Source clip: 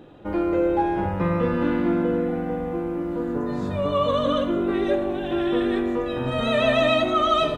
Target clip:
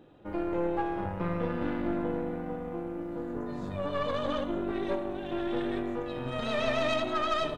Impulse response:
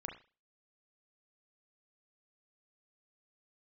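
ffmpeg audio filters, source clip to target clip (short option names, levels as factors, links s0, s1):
-af "aeval=exprs='(tanh(6.31*val(0)+0.75)-tanh(0.75))/6.31':c=same,volume=0.562"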